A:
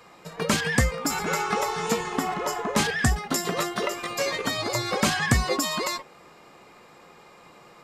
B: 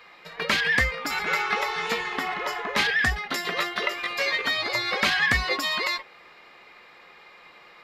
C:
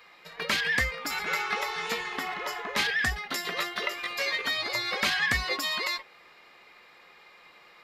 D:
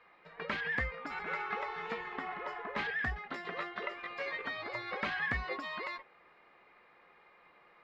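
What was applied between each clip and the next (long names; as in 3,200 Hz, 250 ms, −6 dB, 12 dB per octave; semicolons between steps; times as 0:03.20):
octave-band graphic EQ 125/250/2,000/4,000/8,000 Hz −9/−4/+10/+8/−11 dB; level −3.5 dB
high-shelf EQ 5,500 Hz +7.5 dB; level −5 dB
low-pass filter 1,800 Hz 12 dB per octave; level −5 dB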